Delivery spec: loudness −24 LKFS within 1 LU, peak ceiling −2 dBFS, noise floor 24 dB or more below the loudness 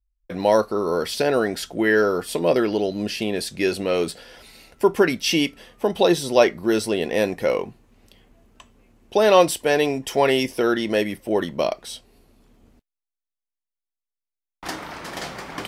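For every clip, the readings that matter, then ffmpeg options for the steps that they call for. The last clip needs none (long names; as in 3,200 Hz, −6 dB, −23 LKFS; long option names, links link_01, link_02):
integrated loudness −21.5 LKFS; sample peak −1.5 dBFS; target loudness −24.0 LKFS
→ -af "volume=-2.5dB"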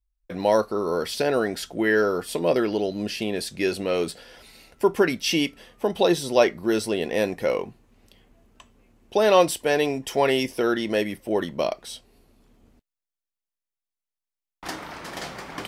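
integrated loudness −24.0 LKFS; sample peak −4.0 dBFS; background noise floor −89 dBFS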